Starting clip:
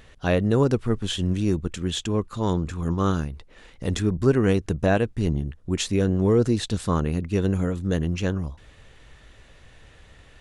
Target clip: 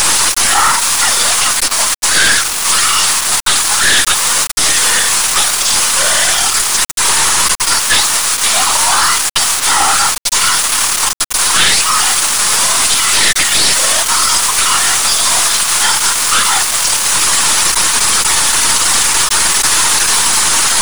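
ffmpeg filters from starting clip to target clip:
ffmpeg -i in.wav -filter_complex "[0:a]aeval=exprs='val(0)+0.5*0.0422*sgn(val(0))':channel_layout=same,highpass=frequency=2100:width_type=q:width=2.6,aderivative,afftfilt=real='hypot(re,im)*cos(2*PI*random(0))':imag='hypot(re,im)*sin(2*PI*random(1))':win_size=512:overlap=0.75,asplit=2[link_01][link_02];[link_02]acompressor=threshold=-48dB:ratio=6,volume=2dB[link_03];[link_01][link_03]amix=inputs=2:normalize=0,highshelf=frequency=8700:gain=9,aeval=exprs='(tanh(79.4*val(0)+0.35)-tanh(0.35))/79.4':channel_layout=same,asetrate=22050,aresample=44100,aeval=exprs='val(0)*gte(abs(val(0)),0.00398)':channel_layout=same,deesser=0.95,alimiter=level_in=35.5dB:limit=-1dB:release=50:level=0:latency=1,volume=-1dB" out.wav

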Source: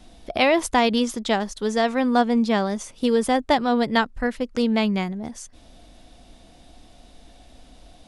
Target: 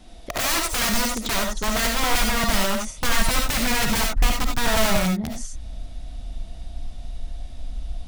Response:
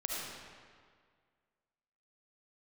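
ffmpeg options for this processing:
-filter_complex "[0:a]aeval=exprs='(mod(9.44*val(0)+1,2)-1)/9.44':channel_layout=same,asubboost=boost=6:cutoff=140[link_01];[1:a]atrim=start_sample=2205,atrim=end_sample=4410[link_02];[link_01][link_02]afir=irnorm=-1:irlink=0,volume=2dB"

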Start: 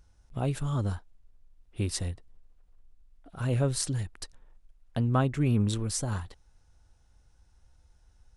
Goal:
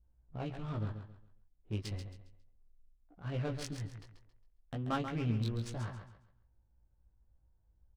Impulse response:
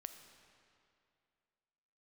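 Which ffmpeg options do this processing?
-filter_complex "[0:a]adynamicsmooth=sensitivity=6:basefreq=820,adynamicequalizer=threshold=0.00224:dfrequency=2900:dqfactor=0.71:tfrequency=2900:tqfactor=0.71:attack=5:release=100:ratio=0.375:range=3.5:mode=boostabove:tftype=bell,flanger=delay=17.5:depth=2.9:speed=0.33,asetrate=46305,aresample=44100,asplit=2[link_01][link_02];[link_02]aecho=0:1:136|272|408|544:0.376|0.113|0.0338|0.0101[link_03];[link_01][link_03]amix=inputs=2:normalize=0,volume=-6dB"

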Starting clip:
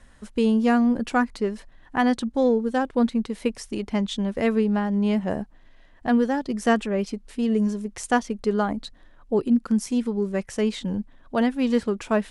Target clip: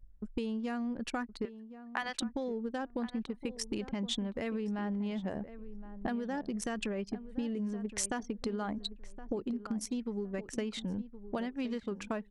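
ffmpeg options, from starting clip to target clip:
ffmpeg -i in.wav -filter_complex "[0:a]asettb=1/sr,asplit=3[link_01][link_02][link_03];[link_01]atrim=end=1.454[link_04];[link_02]atrim=start=1.45:end=2.22,asetpts=PTS-STARTPTS,afade=type=in:duration=0.004:curve=qsin,afade=type=out:start_time=0.766:duration=0.004:curve=qsin,highpass=930[link_05];[link_03]atrim=start=2.216[link_06];[link_04][link_05]acrossfade=duration=0.004:curve1=hsin:curve2=qsin[link_07];[link_07][link_06]acrossfade=duration=0.004:curve1=qsin:curve2=hsin,anlmdn=2.51,dynaudnorm=framelen=350:gausssize=17:maxgain=15dB,alimiter=limit=-12.5dB:level=0:latency=1:release=57,acompressor=threshold=-33dB:ratio=12,asplit=2[link_08][link_09];[link_09]adelay=1067,lowpass=frequency=1300:poles=1,volume=-13dB,asplit=2[link_10][link_11];[link_11]adelay=1067,lowpass=frequency=1300:poles=1,volume=0.23,asplit=2[link_12][link_13];[link_13]adelay=1067,lowpass=frequency=1300:poles=1,volume=0.23[link_14];[link_08][link_10][link_12][link_14]amix=inputs=4:normalize=0,adynamicequalizer=threshold=0.00224:dfrequency=1600:dqfactor=0.7:tfrequency=1600:tqfactor=0.7:attack=5:release=100:ratio=0.375:range=2:mode=boostabove:tftype=highshelf" out.wav

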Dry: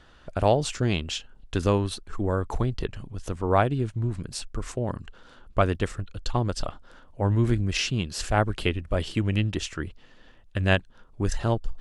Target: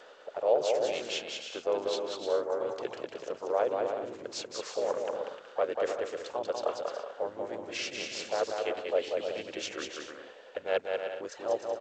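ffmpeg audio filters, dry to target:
ffmpeg -i in.wav -filter_complex "[0:a]areverse,acompressor=threshold=-34dB:ratio=6,areverse,highpass=frequency=540:width_type=q:width=4.9,asplit=3[link_01][link_02][link_03];[link_02]asetrate=37084,aresample=44100,atempo=1.18921,volume=-6dB[link_04];[link_03]asetrate=58866,aresample=44100,atempo=0.749154,volume=-15dB[link_05];[link_01][link_04][link_05]amix=inputs=3:normalize=0,aecho=1:1:190|304|372.4|413.4|438.1:0.631|0.398|0.251|0.158|0.1" -ar 16000 -c:a g722 out.g722

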